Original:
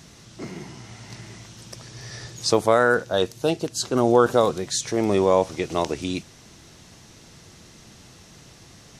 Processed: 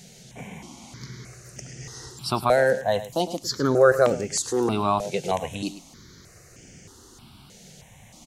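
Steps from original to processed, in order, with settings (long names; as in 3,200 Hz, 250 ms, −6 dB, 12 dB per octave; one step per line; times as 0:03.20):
single-tap delay 116 ms −14 dB
wrong playback speed 44.1 kHz file played as 48 kHz
step-sequenced phaser 3.2 Hz 300–3,900 Hz
level +1.5 dB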